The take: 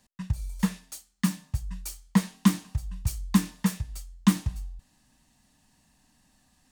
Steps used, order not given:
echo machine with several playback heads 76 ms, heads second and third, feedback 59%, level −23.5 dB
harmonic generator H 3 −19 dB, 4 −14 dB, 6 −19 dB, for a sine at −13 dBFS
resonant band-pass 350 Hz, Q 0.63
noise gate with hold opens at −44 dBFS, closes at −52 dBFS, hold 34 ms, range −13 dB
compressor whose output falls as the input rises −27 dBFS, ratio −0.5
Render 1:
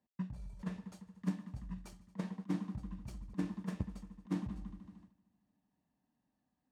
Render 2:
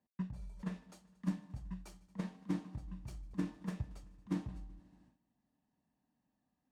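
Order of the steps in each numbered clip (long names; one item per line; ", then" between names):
echo machine with several playback heads, then noise gate with hold, then compressor whose output falls as the input rises, then harmonic generator, then resonant band-pass
compressor whose output falls as the input rises, then echo machine with several playback heads, then noise gate with hold, then resonant band-pass, then harmonic generator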